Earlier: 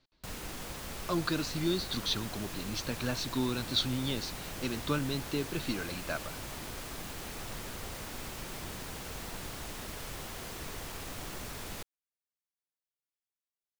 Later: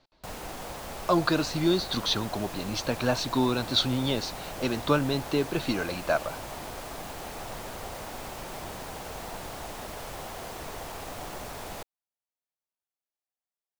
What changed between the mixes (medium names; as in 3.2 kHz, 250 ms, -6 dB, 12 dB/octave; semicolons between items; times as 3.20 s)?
speech +4.5 dB; master: add peaking EQ 720 Hz +10 dB 1.3 oct